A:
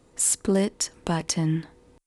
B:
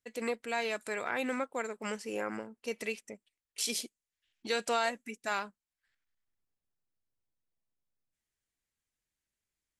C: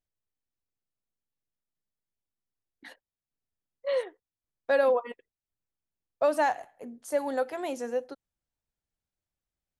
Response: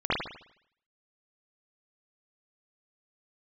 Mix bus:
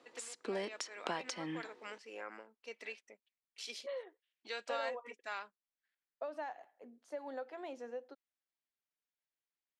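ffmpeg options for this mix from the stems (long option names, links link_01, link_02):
-filter_complex "[0:a]acontrast=28,volume=-4.5dB[link_01];[1:a]volume=-7dB[link_02];[2:a]acompressor=threshold=-27dB:ratio=10,volume=-11dB[link_03];[link_01][link_02]amix=inputs=2:normalize=0,highpass=frequency=660:poles=1,acompressor=threshold=-33dB:ratio=8,volume=0dB[link_04];[link_03][link_04]amix=inputs=2:normalize=0,acrossover=split=210 5400:gain=0.1 1 0.0794[link_05][link_06][link_07];[link_05][link_06][link_07]amix=inputs=3:normalize=0"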